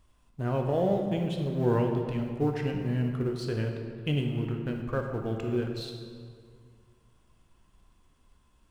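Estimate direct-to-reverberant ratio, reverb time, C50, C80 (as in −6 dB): 2.0 dB, 2.0 s, 4.0 dB, 5.5 dB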